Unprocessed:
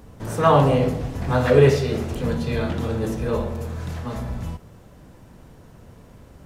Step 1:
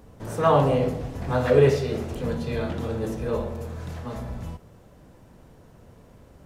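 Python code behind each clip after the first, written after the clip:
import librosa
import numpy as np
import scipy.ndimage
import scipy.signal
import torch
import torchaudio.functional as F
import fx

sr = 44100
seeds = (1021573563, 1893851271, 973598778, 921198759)

y = fx.peak_eq(x, sr, hz=540.0, db=3.0, octaves=1.4)
y = F.gain(torch.from_numpy(y), -5.0).numpy()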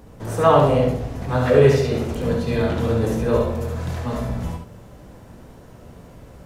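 y = fx.doubler(x, sr, ms=17.0, db=-12.0)
y = y + 10.0 ** (-4.5 / 20.0) * np.pad(y, (int(71 * sr / 1000.0), 0))[:len(y)]
y = fx.rider(y, sr, range_db=4, speed_s=2.0)
y = F.gain(torch.from_numpy(y), 2.5).numpy()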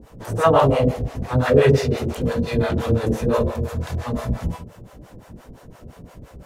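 y = fx.harmonic_tremolo(x, sr, hz=5.8, depth_pct=100, crossover_hz=510.0)
y = F.gain(torch.from_numpy(y), 5.0).numpy()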